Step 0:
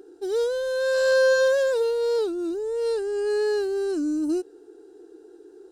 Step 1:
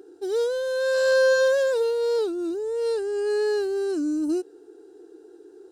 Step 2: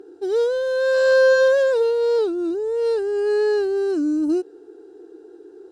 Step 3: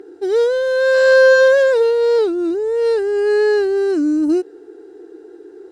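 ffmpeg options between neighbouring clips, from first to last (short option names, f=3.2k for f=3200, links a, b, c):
-af "highpass=60"
-af "aemphasis=mode=reproduction:type=50kf,volume=4.5dB"
-af "equalizer=f=2k:w=3.5:g=9,volume=4.5dB"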